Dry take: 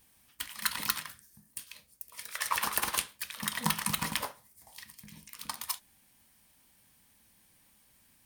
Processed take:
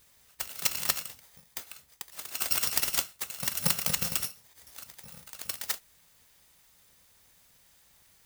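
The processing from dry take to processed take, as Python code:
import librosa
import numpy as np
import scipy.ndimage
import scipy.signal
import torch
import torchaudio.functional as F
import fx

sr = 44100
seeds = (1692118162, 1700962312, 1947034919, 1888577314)

y = fx.bit_reversed(x, sr, seeds[0], block=128)
y = y * librosa.db_to_amplitude(3.0)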